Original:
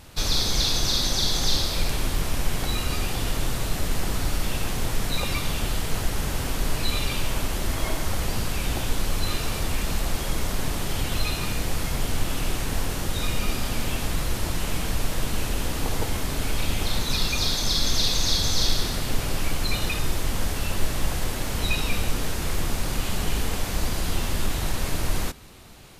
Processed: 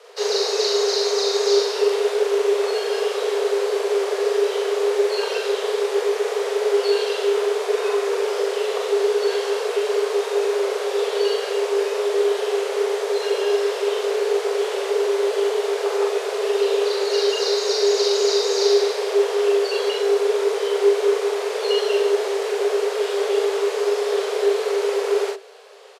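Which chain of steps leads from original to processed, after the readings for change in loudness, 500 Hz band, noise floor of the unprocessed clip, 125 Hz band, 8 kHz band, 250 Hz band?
+6.0 dB, +19.0 dB, −29 dBFS, below −40 dB, −2.5 dB, can't be measured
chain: frequency shifter +390 Hz
high-frequency loss of the air 64 metres
double-tracking delay 42 ms −2 dB

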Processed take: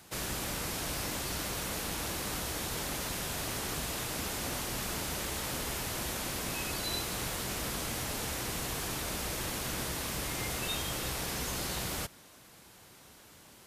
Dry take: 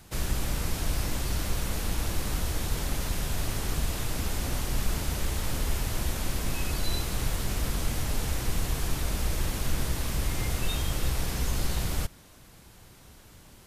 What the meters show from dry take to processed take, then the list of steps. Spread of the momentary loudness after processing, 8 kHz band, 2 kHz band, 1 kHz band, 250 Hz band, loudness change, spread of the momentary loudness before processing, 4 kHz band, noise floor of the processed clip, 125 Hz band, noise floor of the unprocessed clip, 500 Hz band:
5 LU, 0.0 dB, 0.0 dB, −0.5 dB, −4.0 dB, −3.0 dB, 1 LU, 0.0 dB, −56 dBFS, −10.0 dB, −52 dBFS, −1.5 dB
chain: high-pass filter 280 Hz 6 dB per octave

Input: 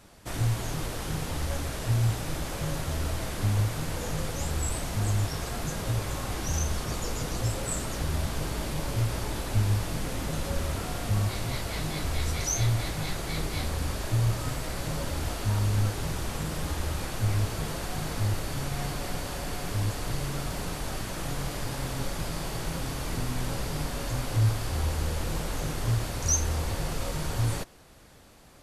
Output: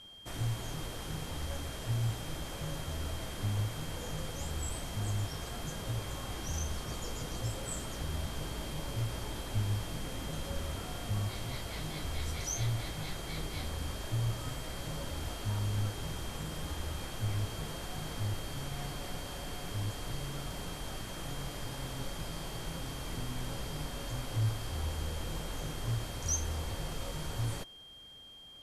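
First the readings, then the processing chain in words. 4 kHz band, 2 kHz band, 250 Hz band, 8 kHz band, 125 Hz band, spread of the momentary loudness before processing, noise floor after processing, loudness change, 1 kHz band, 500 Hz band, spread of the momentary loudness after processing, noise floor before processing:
−4.0 dB, −7.5 dB, −7.5 dB, −7.5 dB, −7.5 dB, 7 LU, −43 dBFS, −7.5 dB, −7.5 dB, −7.5 dB, 6 LU, −36 dBFS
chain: steady tone 3,200 Hz −43 dBFS
level −7.5 dB

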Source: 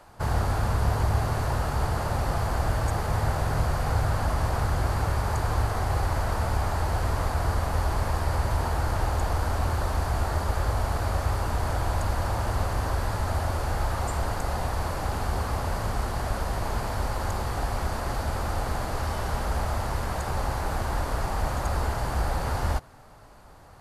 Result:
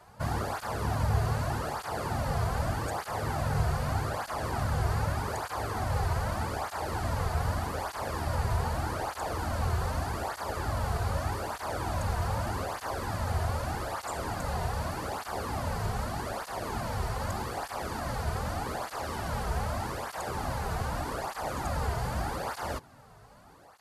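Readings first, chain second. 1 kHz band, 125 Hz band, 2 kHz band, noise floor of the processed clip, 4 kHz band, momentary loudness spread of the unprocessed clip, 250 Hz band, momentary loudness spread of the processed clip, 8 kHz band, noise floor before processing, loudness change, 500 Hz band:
−3.0 dB, −5.0 dB, −3.0 dB, −50 dBFS, −3.0 dB, 4 LU, −3.0 dB, 5 LU, −3.0 dB, −46 dBFS, −4.5 dB, −3.0 dB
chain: through-zero flanger with one copy inverted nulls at 0.82 Hz, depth 3.8 ms

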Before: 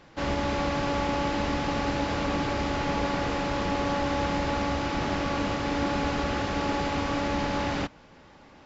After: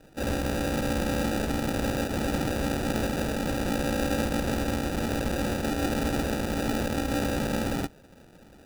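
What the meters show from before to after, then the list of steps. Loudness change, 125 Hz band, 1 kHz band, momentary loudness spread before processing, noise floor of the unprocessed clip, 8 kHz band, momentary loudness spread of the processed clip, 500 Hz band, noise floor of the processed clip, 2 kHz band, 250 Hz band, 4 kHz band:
−0.5 dB, +1.5 dB, −5.5 dB, 1 LU, −53 dBFS, can't be measured, 2 LU, 0.0 dB, −53 dBFS, −2.0 dB, +1.5 dB, −2.0 dB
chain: decimation without filtering 41×

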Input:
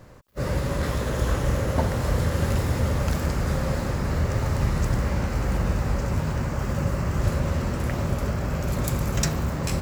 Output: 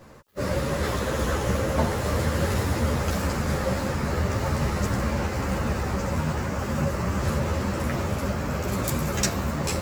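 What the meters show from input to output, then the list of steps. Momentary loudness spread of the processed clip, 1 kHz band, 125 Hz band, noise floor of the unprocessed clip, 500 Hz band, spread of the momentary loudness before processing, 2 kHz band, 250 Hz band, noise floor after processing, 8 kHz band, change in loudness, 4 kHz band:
3 LU, +2.5 dB, −2.5 dB, −29 dBFS, +2.0 dB, 3 LU, +2.5 dB, +1.0 dB, −30 dBFS, +2.5 dB, −0.5 dB, +2.5 dB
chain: low-shelf EQ 91 Hz −10.5 dB
string-ensemble chorus
level +5.5 dB

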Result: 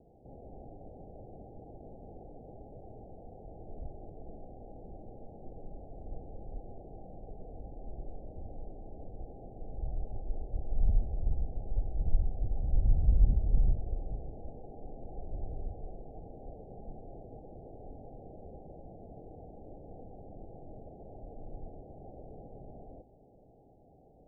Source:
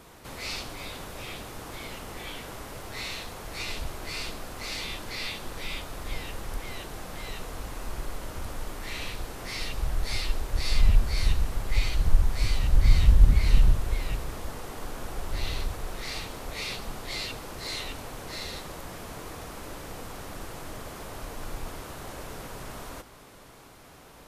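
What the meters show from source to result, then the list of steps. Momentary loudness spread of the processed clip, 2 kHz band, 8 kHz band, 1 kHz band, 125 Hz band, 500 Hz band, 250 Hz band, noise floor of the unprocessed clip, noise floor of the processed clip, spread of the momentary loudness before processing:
18 LU, below −40 dB, below −40 dB, −12.5 dB, −7.0 dB, −7.0 dB, −7.0 dB, −50 dBFS, −59 dBFS, 15 LU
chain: Chebyshev low-pass filter 810 Hz, order 8
level −6.5 dB

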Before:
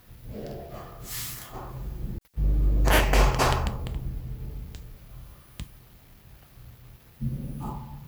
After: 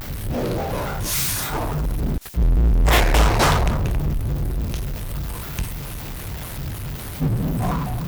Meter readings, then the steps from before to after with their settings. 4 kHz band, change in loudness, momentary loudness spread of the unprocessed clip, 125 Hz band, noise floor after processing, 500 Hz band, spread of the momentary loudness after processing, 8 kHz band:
+7.0 dB, +5.5 dB, 22 LU, +8.5 dB, −32 dBFS, +6.5 dB, 14 LU, +9.5 dB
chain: power curve on the samples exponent 0.5
pitch modulation by a square or saw wave square 3.5 Hz, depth 250 cents

